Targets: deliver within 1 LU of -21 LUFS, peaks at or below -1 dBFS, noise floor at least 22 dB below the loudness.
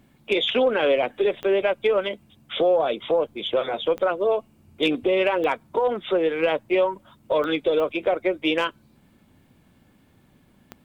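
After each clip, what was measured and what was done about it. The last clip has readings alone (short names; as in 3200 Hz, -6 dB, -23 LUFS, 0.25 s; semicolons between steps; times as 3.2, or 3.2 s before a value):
clicks 6; loudness -23.0 LUFS; peak -11.0 dBFS; loudness target -21.0 LUFS
-> de-click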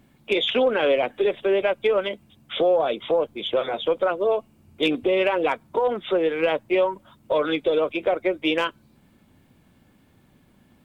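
clicks 0; loudness -23.0 LUFS; peak -11.0 dBFS; loudness target -21.0 LUFS
-> gain +2 dB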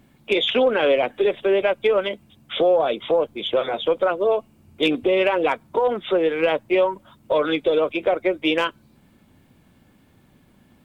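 loudness -21.0 LUFS; peak -9.0 dBFS; noise floor -57 dBFS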